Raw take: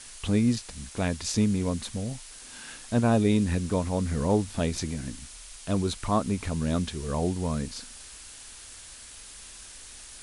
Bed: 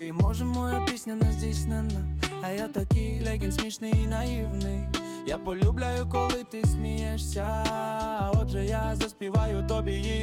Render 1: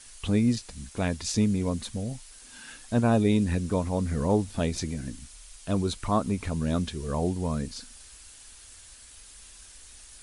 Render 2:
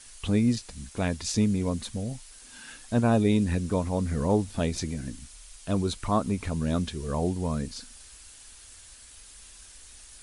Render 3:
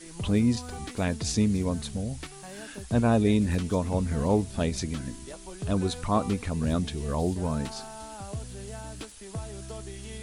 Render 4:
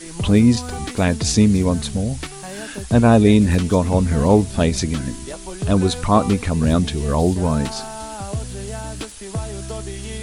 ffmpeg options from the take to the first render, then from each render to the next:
-af "afftdn=nr=6:nf=-46"
-af anull
-filter_complex "[1:a]volume=-11.5dB[a];[0:a][a]amix=inputs=2:normalize=0"
-af "volume=10dB,alimiter=limit=-2dB:level=0:latency=1"

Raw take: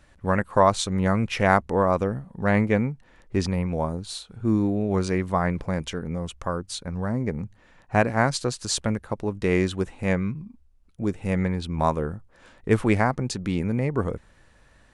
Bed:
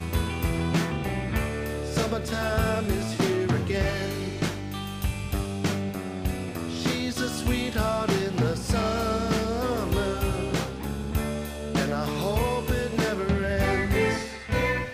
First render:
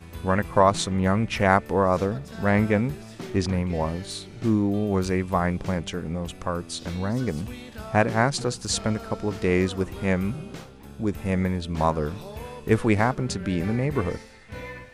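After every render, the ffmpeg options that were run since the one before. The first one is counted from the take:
-filter_complex "[1:a]volume=-12.5dB[a];[0:a][a]amix=inputs=2:normalize=0"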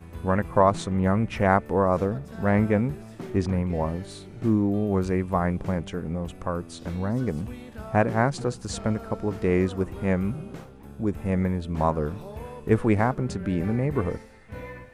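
-filter_complex "[0:a]acrossover=split=9700[a][b];[b]acompressor=threshold=-59dB:ratio=4:attack=1:release=60[c];[a][c]amix=inputs=2:normalize=0,equalizer=f=4.6k:t=o:w=2.2:g=-10"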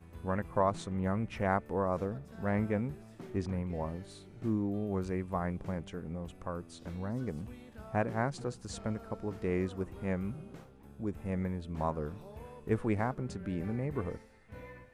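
-af "volume=-10dB"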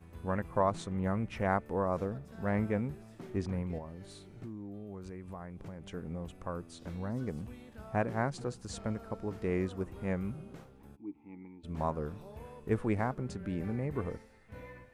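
-filter_complex "[0:a]asettb=1/sr,asplit=3[a][b][c];[a]atrim=end=3.784[d];[b]atrim=start=3.78:end=5.9,asetpts=PTS-STARTPTS,afade=t=in:d=0.004:c=qsin,afade=t=out:st=2.116:d=0.004:c=qsin,acompressor=threshold=-40dB:ratio=6:attack=3.2:release=140:knee=1:detection=peak[e];[c]atrim=start=5.896[f];[d][e]acrossfade=d=0.004:c1=hsin:c2=qsin[g];[g][f]acrossfade=d=0.004:c1=qsin:c2=hsin,asplit=3[h][i][j];[h]afade=t=out:st=10.95:d=0.02[k];[i]asplit=3[l][m][n];[l]bandpass=f=300:t=q:w=8,volume=0dB[o];[m]bandpass=f=870:t=q:w=8,volume=-6dB[p];[n]bandpass=f=2.24k:t=q:w=8,volume=-9dB[q];[o][p][q]amix=inputs=3:normalize=0,afade=t=in:st=10.95:d=0.02,afade=t=out:st=11.63:d=0.02[r];[j]afade=t=in:st=11.63:d=0.02[s];[k][r][s]amix=inputs=3:normalize=0"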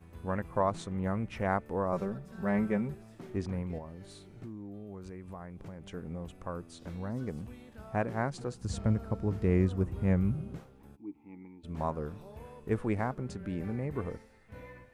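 -filter_complex "[0:a]asettb=1/sr,asplit=3[a][b][c];[a]atrim=end=1.924[d];[b]atrim=start=1.92:end=2.94,asetpts=PTS-STARTPTS,afade=t=in:d=0.004:c=qsin,afade=t=out:st=1.016:d=0.004:c=qsin,aecho=1:1:5.2:0.65,atrim=end_sample=44982[e];[c]atrim=start=2.936[f];[d][e]acrossfade=d=0.004:c1=hsin:c2=qsin[g];[g][f]acrossfade=d=0.004:c1=qsin:c2=hsin,asettb=1/sr,asplit=3[h][i][j];[h]atrim=end=8.614[k];[i]atrim=start=8.61:end=10.59,asetpts=PTS-STARTPTS,afade=t=in:d=0.004:c=qsin,afade=t=out:st=1.976:d=0.004:c=qsin,equalizer=f=85:t=o:w=2.9:g=11.5[l];[j]atrim=start=10.586[m];[k][l]acrossfade=d=0.004:c1=hsin:c2=qsin[n];[n][m]acrossfade=d=0.004:c1=qsin:c2=hsin"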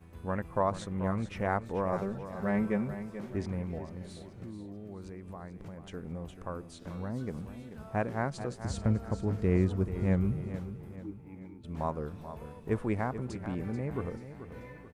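-af "aecho=1:1:436|872|1308|1744:0.266|0.117|0.0515|0.0227"

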